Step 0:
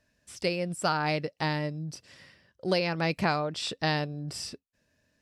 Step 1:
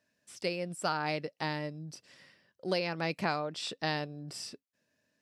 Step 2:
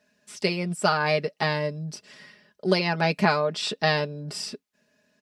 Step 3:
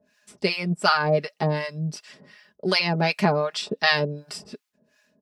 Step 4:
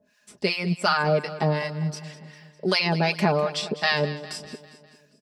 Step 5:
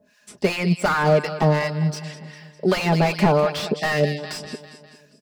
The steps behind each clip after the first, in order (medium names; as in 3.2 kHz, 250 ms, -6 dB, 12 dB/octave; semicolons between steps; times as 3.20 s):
high-pass 160 Hz 12 dB/octave; trim -4.5 dB
treble shelf 8.1 kHz -6.5 dB; comb 4.8 ms, depth 72%; trim +8.5 dB
harmonic tremolo 2.7 Hz, depth 100%, crossover 780 Hz; trim +6.5 dB
in parallel at +2.5 dB: peak limiter -13 dBFS, peak gain reduction 8.5 dB; on the sum: feedback delay 201 ms, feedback 55%, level -15.5 dB; trim -7 dB
spectral selection erased 3.79–4.18 s, 800–1700 Hz; slew-rate limiter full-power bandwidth 85 Hz; trim +5.5 dB